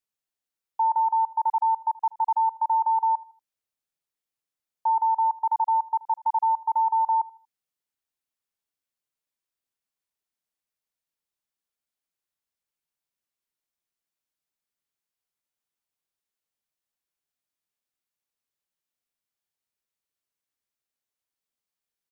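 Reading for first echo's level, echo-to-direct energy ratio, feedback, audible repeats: -21.0 dB, -20.5 dB, 34%, 2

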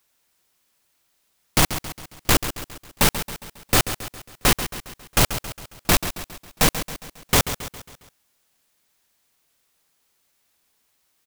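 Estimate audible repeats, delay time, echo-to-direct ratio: 4, 136 ms, -10.0 dB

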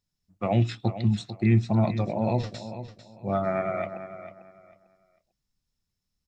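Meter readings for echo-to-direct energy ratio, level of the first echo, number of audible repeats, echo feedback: -11.5 dB, -12.0 dB, 2, 24%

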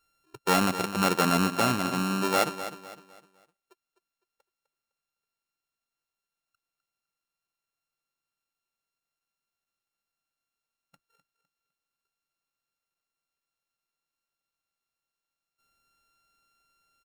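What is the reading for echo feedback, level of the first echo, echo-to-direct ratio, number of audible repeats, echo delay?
35%, -12.0 dB, -11.5 dB, 3, 254 ms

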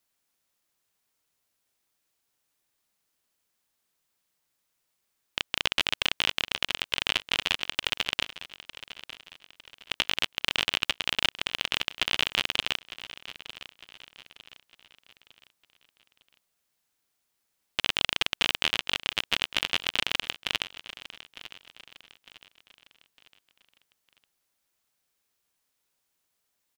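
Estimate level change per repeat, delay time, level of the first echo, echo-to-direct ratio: -8.0 dB, 905 ms, -15.5 dB, -14.5 dB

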